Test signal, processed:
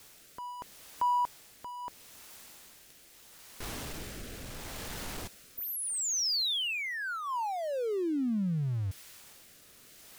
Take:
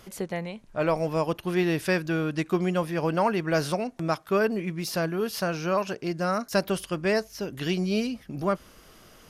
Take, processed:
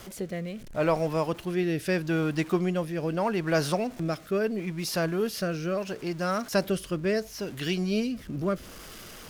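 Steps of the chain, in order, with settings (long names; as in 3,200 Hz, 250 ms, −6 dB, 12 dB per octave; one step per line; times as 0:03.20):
converter with a step at zero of −39.5 dBFS
rotating-speaker cabinet horn 0.75 Hz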